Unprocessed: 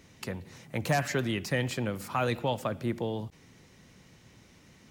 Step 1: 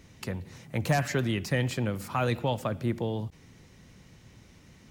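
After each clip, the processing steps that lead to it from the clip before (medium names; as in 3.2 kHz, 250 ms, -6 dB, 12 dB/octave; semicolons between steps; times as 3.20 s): bass shelf 120 Hz +8.5 dB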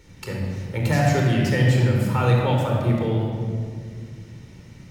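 simulated room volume 3600 m³, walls mixed, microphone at 4.4 m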